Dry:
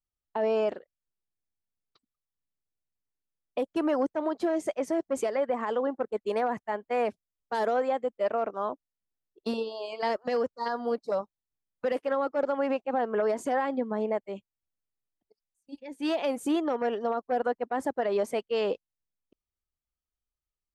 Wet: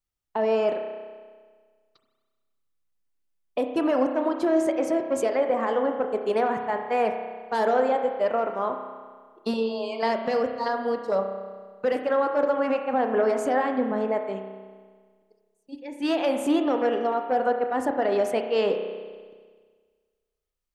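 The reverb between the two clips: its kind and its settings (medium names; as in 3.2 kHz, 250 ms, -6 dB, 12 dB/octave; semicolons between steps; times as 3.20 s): spring tank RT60 1.6 s, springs 31 ms, chirp 55 ms, DRR 4.5 dB; trim +3.5 dB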